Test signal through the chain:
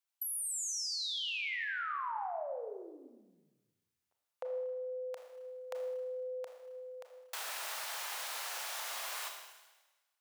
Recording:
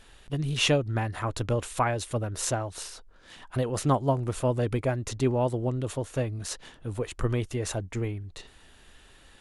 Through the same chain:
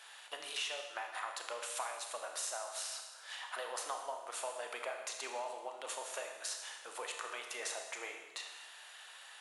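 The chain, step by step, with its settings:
high-pass filter 710 Hz 24 dB per octave
downward compressor 6 to 1, threshold −42 dBFS
four-comb reverb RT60 1.2 s, combs from 26 ms, DRR 3 dB
level +2.5 dB

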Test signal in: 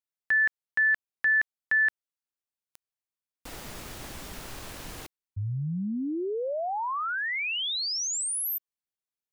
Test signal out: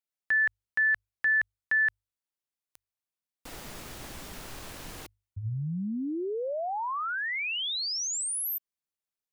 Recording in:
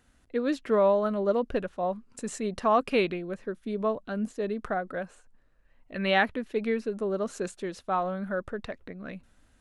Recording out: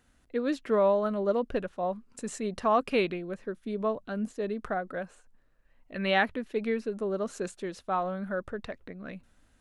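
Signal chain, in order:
mains-hum notches 50/100 Hz
level −1.5 dB

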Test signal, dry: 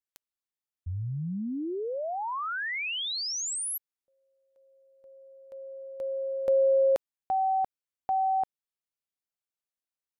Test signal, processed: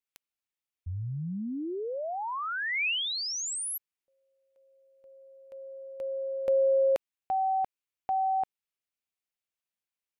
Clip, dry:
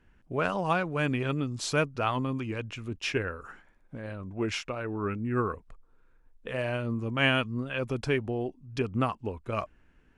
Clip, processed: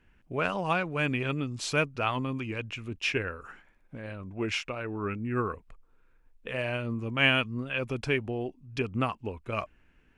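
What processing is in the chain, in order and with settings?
parametric band 2,500 Hz +6 dB 0.73 octaves
level −1.5 dB

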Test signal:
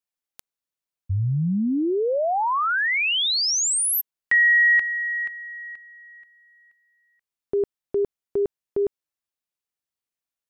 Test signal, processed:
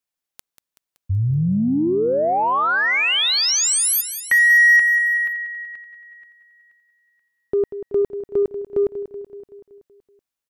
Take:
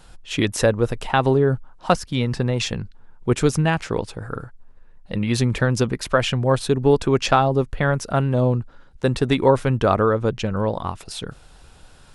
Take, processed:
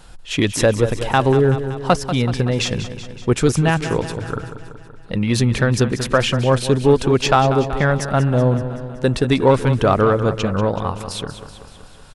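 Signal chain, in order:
repeating echo 189 ms, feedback 60%, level −12 dB
in parallel at −5.5 dB: soft clipping −15.5 dBFS

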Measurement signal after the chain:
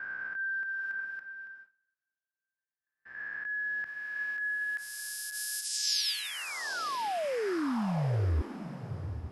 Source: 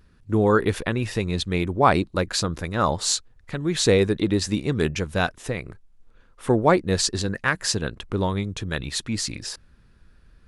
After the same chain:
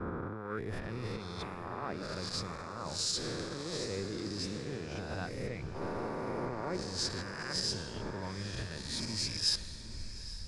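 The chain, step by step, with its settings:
peak hold with a rise ahead of every peak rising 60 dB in 1.88 s
reversed playback
downward compressor 5 to 1, threshold −33 dBFS
reversed playback
bass and treble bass +4 dB, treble −5 dB
brickwall limiter −29.5 dBFS
on a send: feedback delay with all-pass diffusion 839 ms, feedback 50%, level −7.5 dB
on the sum: noise gate with hold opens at −35 dBFS
parametric band 5,100 Hz +10.5 dB 0.23 octaves
multiband upward and downward expander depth 70%

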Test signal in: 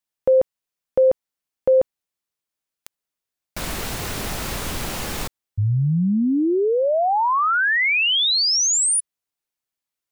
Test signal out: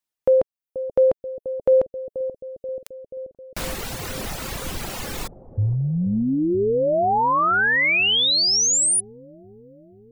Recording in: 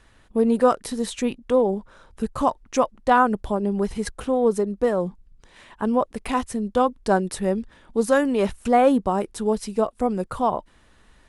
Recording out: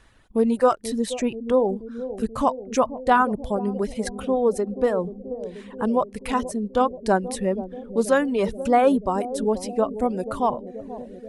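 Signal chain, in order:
reverb reduction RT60 1.2 s
bucket-brigade delay 482 ms, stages 2,048, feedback 70%, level −12 dB

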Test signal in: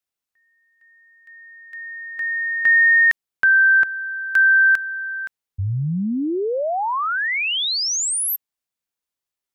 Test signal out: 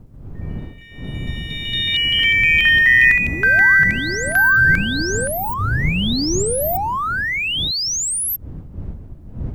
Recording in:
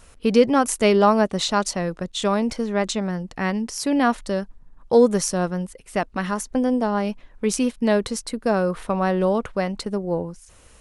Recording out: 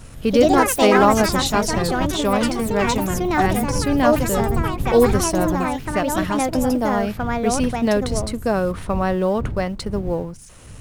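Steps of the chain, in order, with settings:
mu-law and A-law mismatch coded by mu
wind on the microphone 110 Hz −30 dBFS
delay with pitch and tempo change per echo 136 ms, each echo +4 semitones, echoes 3

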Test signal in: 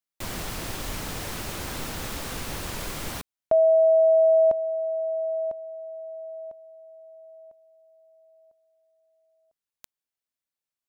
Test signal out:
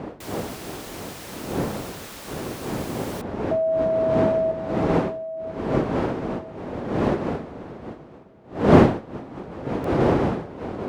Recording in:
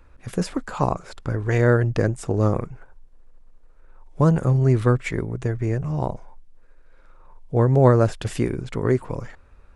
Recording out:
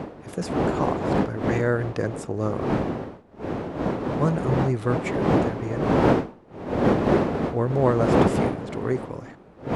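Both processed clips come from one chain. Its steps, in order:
wind on the microphone 420 Hz −19 dBFS
high-pass filter 150 Hz 6 dB per octave
level −4 dB

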